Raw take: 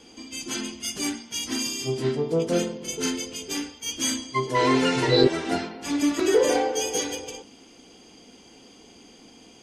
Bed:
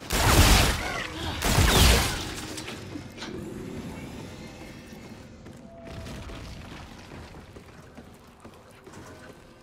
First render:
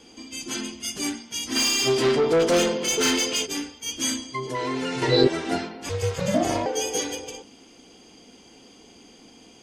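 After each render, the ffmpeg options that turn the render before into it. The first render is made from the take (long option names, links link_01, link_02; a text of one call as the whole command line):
ffmpeg -i in.wav -filter_complex "[0:a]asplit=3[link_01][link_02][link_03];[link_01]afade=type=out:start_time=1.55:duration=0.02[link_04];[link_02]asplit=2[link_05][link_06];[link_06]highpass=frequency=720:poles=1,volume=22dB,asoftclip=type=tanh:threshold=-12dB[link_07];[link_05][link_07]amix=inputs=2:normalize=0,lowpass=frequency=4900:poles=1,volume=-6dB,afade=type=in:start_time=1.55:duration=0.02,afade=type=out:start_time=3.45:duration=0.02[link_08];[link_03]afade=type=in:start_time=3.45:duration=0.02[link_09];[link_04][link_08][link_09]amix=inputs=3:normalize=0,asettb=1/sr,asplit=3[link_10][link_11][link_12];[link_10]atrim=end=4.174[link_13];[link_11]atrim=start=4.17:end=5.02,asetpts=PTS-STARTPTS,afade=type=in:duration=0.004:curve=qsin,afade=type=out:start_time=0.846:duration=0.004:curve=qsin,acompressor=threshold=-26dB:ratio=3:attack=3.2:release=140:knee=1:detection=peak[link_14];[link_12]atrim=start=5.016[link_15];[link_13][link_14]acrossfade=duration=0.004:curve1=hsin:curve2=qsin[link_16];[link_16][link_15]acrossfade=duration=0.004:curve1=qsin:curve2=hsin,asettb=1/sr,asplit=3[link_17][link_18][link_19];[link_17]atrim=end=5.894[link_20];[link_18]atrim=start=5.89:end=6.66,asetpts=PTS-STARTPTS,afade=type=in:duration=0.004:curve=qsin,afade=type=out:start_time=0.766:duration=0.004:curve=qsin,aeval=exprs='val(0)*sin(2*PI*190*n/s)':channel_layout=same[link_21];[link_19]atrim=start=6.656[link_22];[link_20][link_21]acrossfade=duration=0.004:curve1=hsin:curve2=qsin[link_23];[link_23][link_22]acrossfade=duration=0.004:curve1=qsin:curve2=hsin" out.wav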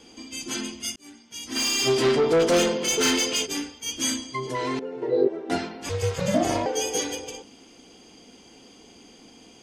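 ffmpeg -i in.wav -filter_complex "[0:a]asettb=1/sr,asplit=3[link_01][link_02][link_03];[link_01]atrim=end=4.794[link_04];[link_02]atrim=start=4.79:end=5.5,asetpts=PTS-STARTPTS,afade=type=in:duration=0.004:curve=qsin,afade=type=out:start_time=0.706:duration=0.004:curve=qsin,bandpass=frequency=450:width_type=q:width=2.4[link_05];[link_03]atrim=start=5.496[link_06];[link_04][link_05]acrossfade=duration=0.004:curve1=hsin:curve2=qsin[link_07];[link_07][link_06]acrossfade=duration=0.004:curve1=qsin:curve2=hsin,asplit=2[link_08][link_09];[link_08]atrim=end=0.96,asetpts=PTS-STARTPTS,afade=type=out:start_time=0.956:duration=0.004:curve=hsin[link_10];[link_09]atrim=start=0.96,asetpts=PTS-STARTPTS,afade=type=in:duration=0.94[link_11];[link_10][link_11]concat=n=2:v=0:a=1" out.wav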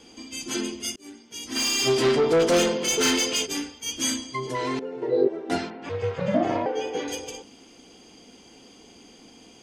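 ffmpeg -i in.wav -filter_complex "[0:a]asettb=1/sr,asplit=3[link_01][link_02][link_03];[link_01]atrim=end=0.544[link_04];[link_02]atrim=start=0.54:end=1.47,asetpts=PTS-STARTPTS,afade=type=in:duration=0.004:curve=qsin,afade=type=out:start_time=0.926:duration=0.004:curve=qsin,equalizer=frequency=400:width_type=o:width=0.77:gain=9[link_05];[link_03]atrim=start=1.466[link_06];[link_04][link_05]acrossfade=duration=0.004:curve1=hsin:curve2=qsin[link_07];[link_07][link_06]acrossfade=duration=0.004:curve1=qsin:curve2=hsin,asettb=1/sr,asplit=3[link_08][link_09][link_10];[link_08]atrim=end=5.704[link_11];[link_09]atrim=start=5.7:end=7.08,asetpts=PTS-STARTPTS,afade=type=in:duration=0.004:curve=qsin,afade=type=out:start_time=1.376:duration=0.004:curve=qsin,highpass=120,lowpass=2300[link_12];[link_10]atrim=start=7.076[link_13];[link_11][link_12]acrossfade=duration=0.004:curve1=hsin:curve2=qsin[link_14];[link_14][link_13]acrossfade=duration=0.004:curve1=qsin:curve2=hsin" out.wav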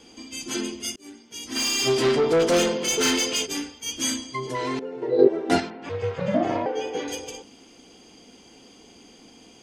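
ffmpeg -i in.wav -filter_complex "[0:a]asplit=3[link_01][link_02][link_03];[link_01]atrim=end=5.192[link_04];[link_02]atrim=start=5.188:end=5.602,asetpts=PTS-STARTPTS,volume=5.5dB[link_05];[link_03]atrim=start=5.598[link_06];[link_04][link_05]acrossfade=duration=0.004:curve1=hsin:curve2=hsin[link_07];[link_07][link_06]acrossfade=duration=0.004:curve1=hsin:curve2=hsin" out.wav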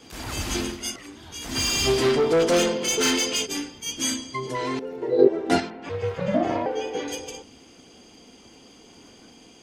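ffmpeg -i in.wav -i bed.wav -filter_complex "[1:a]volume=-13.5dB[link_01];[0:a][link_01]amix=inputs=2:normalize=0" out.wav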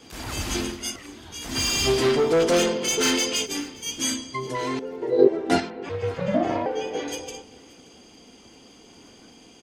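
ffmpeg -i in.wav -af "aecho=1:1:575:0.075" out.wav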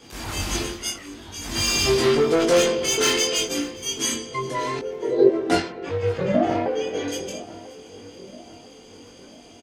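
ffmpeg -i in.wav -filter_complex "[0:a]asplit=2[link_01][link_02];[link_02]adelay=21,volume=-2.5dB[link_03];[link_01][link_03]amix=inputs=2:normalize=0,asplit=2[link_04][link_05];[link_05]adelay=992,lowpass=frequency=1500:poles=1,volume=-17dB,asplit=2[link_06][link_07];[link_07]adelay=992,lowpass=frequency=1500:poles=1,volume=0.49,asplit=2[link_08][link_09];[link_09]adelay=992,lowpass=frequency=1500:poles=1,volume=0.49,asplit=2[link_10][link_11];[link_11]adelay=992,lowpass=frequency=1500:poles=1,volume=0.49[link_12];[link_04][link_06][link_08][link_10][link_12]amix=inputs=5:normalize=0" out.wav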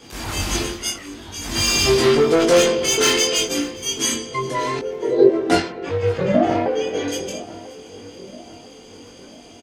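ffmpeg -i in.wav -af "volume=3.5dB,alimiter=limit=-1dB:level=0:latency=1" out.wav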